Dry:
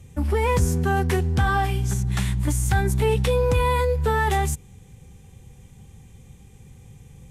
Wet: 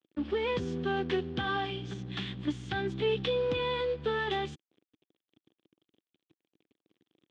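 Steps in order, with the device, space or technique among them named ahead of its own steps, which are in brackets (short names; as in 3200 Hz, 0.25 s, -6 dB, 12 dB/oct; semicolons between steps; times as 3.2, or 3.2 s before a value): blown loudspeaker (crossover distortion -39.5 dBFS; speaker cabinet 220–4100 Hz, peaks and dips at 320 Hz +6 dB, 620 Hz -6 dB, 920 Hz -9 dB, 1400 Hz -3 dB, 2100 Hz -4 dB, 3300 Hz +8 dB); gain -5 dB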